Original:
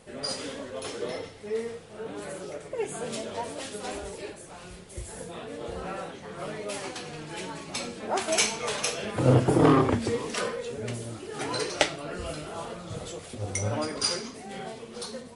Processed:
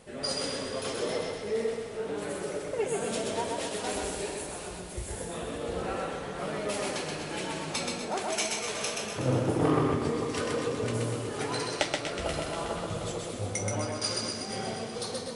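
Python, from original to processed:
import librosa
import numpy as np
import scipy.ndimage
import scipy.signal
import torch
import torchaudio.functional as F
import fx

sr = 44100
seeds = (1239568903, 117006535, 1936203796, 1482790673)

y = fx.high_shelf(x, sr, hz=7100.0, db=9.0, at=(3.89, 4.68))
y = fx.echo_split(y, sr, split_hz=1300.0, low_ms=448, high_ms=241, feedback_pct=52, wet_db=-11.0)
y = fx.rider(y, sr, range_db=4, speed_s=0.5)
y = fx.echo_feedback(y, sr, ms=128, feedback_pct=42, wet_db=-3)
y = y * librosa.db_to_amplitude(-3.5)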